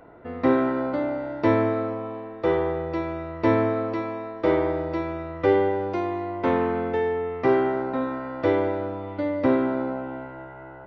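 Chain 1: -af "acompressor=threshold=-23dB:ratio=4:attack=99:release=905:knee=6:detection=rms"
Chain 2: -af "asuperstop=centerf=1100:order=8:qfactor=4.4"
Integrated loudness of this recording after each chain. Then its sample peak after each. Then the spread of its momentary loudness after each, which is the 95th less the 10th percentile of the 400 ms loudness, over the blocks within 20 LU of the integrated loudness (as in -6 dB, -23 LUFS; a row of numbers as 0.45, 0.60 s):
-28.5, -25.0 LUFS; -11.5, -8.0 dBFS; 7, 10 LU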